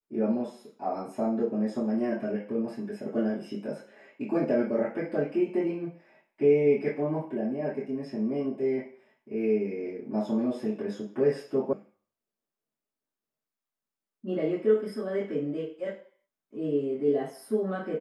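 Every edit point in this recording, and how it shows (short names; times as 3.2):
11.73 sound cut off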